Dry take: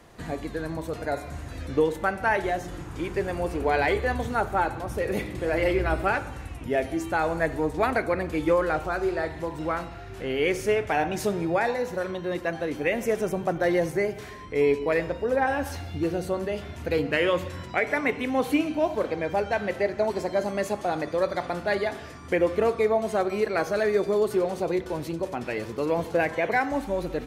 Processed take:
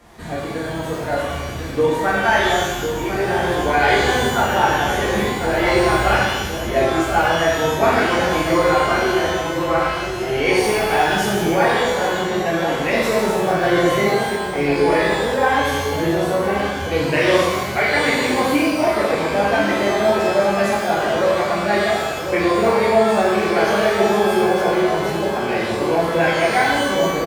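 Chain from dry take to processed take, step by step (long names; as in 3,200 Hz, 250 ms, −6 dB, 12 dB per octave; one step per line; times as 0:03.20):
slap from a distant wall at 180 metres, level −7 dB
reverb with rising layers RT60 1.1 s, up +12 semitones, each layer −8 dB, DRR −7.5 dB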